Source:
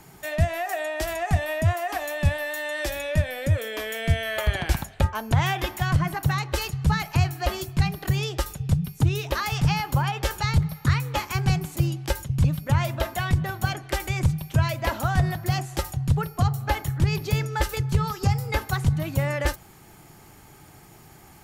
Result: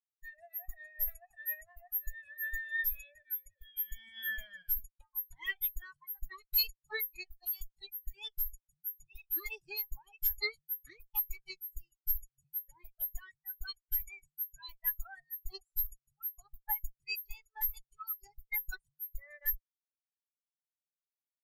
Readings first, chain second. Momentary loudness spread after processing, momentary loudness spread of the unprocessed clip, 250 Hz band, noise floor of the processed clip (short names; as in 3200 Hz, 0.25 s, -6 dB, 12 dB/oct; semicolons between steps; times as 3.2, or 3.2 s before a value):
11 LU, 5 LU, under -35 dB, under -85 dBFS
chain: differentiator; added harmonics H 6 -33 dB, 7 -30 dB, 8 -14 dB, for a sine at -18.5 dBFS; spectral expander 4:1